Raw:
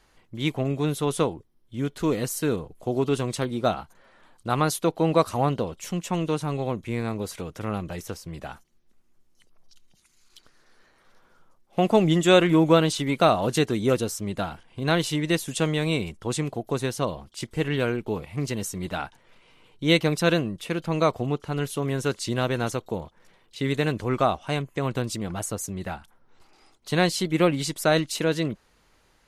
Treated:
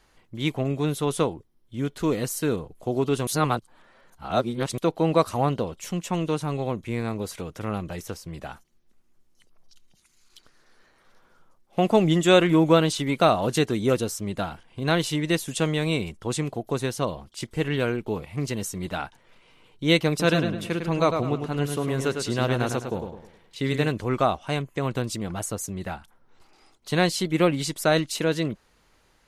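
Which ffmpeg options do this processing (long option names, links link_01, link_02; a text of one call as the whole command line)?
ffmpeg -i in.wav -filter_complex "[0:a]asettb=1/sr,asplit=3[link_01][link_02][link_03];[link_01]atrim=end=20.094[link_04];[link_02]atrim=start=20.09:end=23.89,asetpts=PTS-STARTPTS,afade=type=in:duration=0.004:curve=qsin,afade=type=out:start_time=3.796:duration=0.004:curve=qsin,asplit=2[link_05][link_06];[link_06]adelay=104,lowpass=frequency=4400:poles=1,volume=-6dB,asplit=2[link_07][link_08];[link_08]adelay=104,lowpass=frequency=4400:poles=1,volume=0.39,asplit=2[link_09][link_10];[link_10]adelay=104,lowpass=frequency=4400:poles=1,volume=0.39,asplit=2[link_11][link_12];[link_12]adelay=104,lowpass=frequency=4400:poles=1,volume=0.39,asplit=2[link_13][link_14];[link_14]adelay=104,lowpass=frequency=4400:poles=1,volume=0.39[link_15];[link_05][link_07][link_09][link_11][link_13][link_15]amix=inputs=6:normalize=0,atrim=end_sample=167580[link_16];[link_03]atrim=start=23.886[link_17];[link_04][link_16]acrossfade=duration=0.004:curve1=hsin:curve2=qsin[link_18];[link_18][link_17]acrossfade=duration=0.004:curve1=qsin:curve2=hsin,asplit=3[link_19][link_20][link_21];[link_19]atrim=end=3.272[link_22];[link_20]atrim=start=3.268:end=4.782,asetpts=PTS-STARTPTS,areverse[link_23];[link_21]atrim=start=4.778[link_24];[link_22][link_23]acrossfade=duration=0.004:curve1=hsin:curve2=hsin[link_25];[link_25][link_24]acrossfade=duration=0.004:curve1=hsin:curve2=hsin" out.wav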